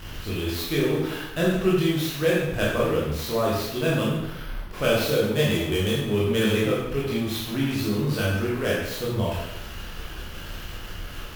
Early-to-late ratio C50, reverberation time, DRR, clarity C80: 0.5 dB, 0.85 s, -6.5 dB, 3.5 dB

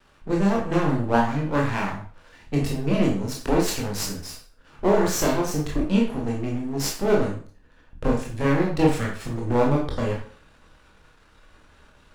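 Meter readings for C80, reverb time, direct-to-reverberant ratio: 9.5 dB, 0.45 s, -2.5 dB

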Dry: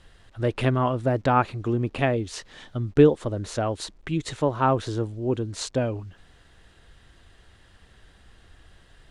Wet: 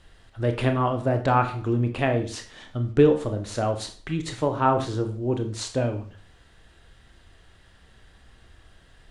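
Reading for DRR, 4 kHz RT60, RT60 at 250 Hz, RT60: 5.5 dB, 0.40 s, 0.40 s, 0.45 s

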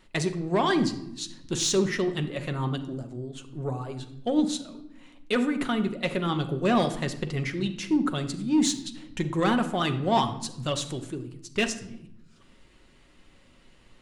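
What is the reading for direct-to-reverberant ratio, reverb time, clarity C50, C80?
6.5 dB, 0.85 s, 12.0 dB, 14.5 dB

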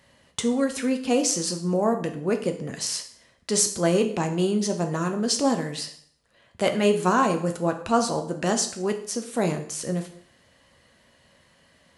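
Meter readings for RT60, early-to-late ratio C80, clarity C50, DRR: 0.60 s, 14.0 dB, 11.0 dB, 5.0 dB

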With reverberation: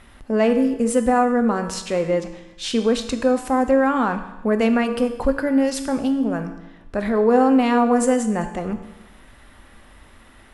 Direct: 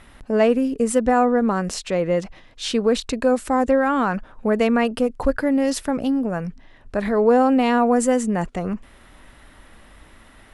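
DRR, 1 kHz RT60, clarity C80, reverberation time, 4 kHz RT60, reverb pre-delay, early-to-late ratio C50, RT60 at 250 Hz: 7.0 dB, 1.0 s, 11.5 dB, 1.0 s, 1.0 s, 3 ms, 10.0 dB, 1.0 s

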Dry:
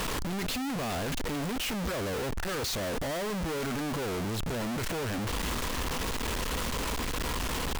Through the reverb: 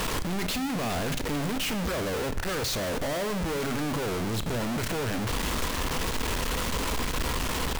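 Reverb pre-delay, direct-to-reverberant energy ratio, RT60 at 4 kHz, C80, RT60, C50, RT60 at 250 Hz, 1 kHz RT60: 24 ms, 11.0 dB, 0.75 s, 16.5 dB, 1.0 s, 14.5 dB, 1.6 s, 0.95 s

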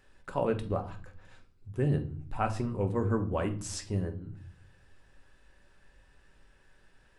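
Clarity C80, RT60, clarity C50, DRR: 19.0 dB, no single decay rate, 13.5 dB, 5.0 dB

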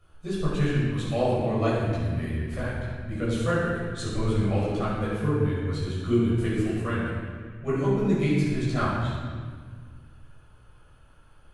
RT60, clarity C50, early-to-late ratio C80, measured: 1.6 s, -1.5 dB, 0.0 dB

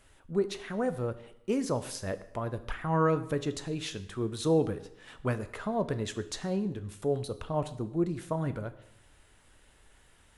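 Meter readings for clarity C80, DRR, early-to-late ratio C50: 17.0 dB, 11.0 dB, 15.0 dB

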